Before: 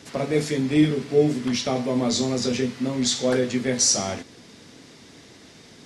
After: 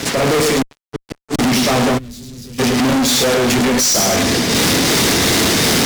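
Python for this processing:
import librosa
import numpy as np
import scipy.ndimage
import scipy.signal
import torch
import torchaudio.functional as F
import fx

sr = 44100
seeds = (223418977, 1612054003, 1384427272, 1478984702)

y = np.minimum(x, 2.0 * 10.0 ** (-14.0 / 20.0) - x)
y = fx.recorder_agc(y, sr, target_db=-12.0, rise_db_per_s=37.0, max_gain_db=30)
y = fx.hum_notches(y, sr, base_hz=50, count=6)
y = y * (1.0 - 0.74 / 2.0 + 0.74 / 2.0 * np.cos(2.0 * np.pi * 2.8 * (np.arange(len(y)) / sr)))
y = fx.echo_feedback(y, sr, ms=107, feedback_pct=27, wet_db=-10)
y = fx.gate_flip(y, sr, shuts_db=-19.0, range_db=-37, at=(0.61, 1.39))
y = fx.fuzz(y, sr, gain_db=41.0, gate_db=-51.0)
y = fx.tone_stack(y, sr, knobs='10-0-1', at=(1.97, 2.58), fade=0.02)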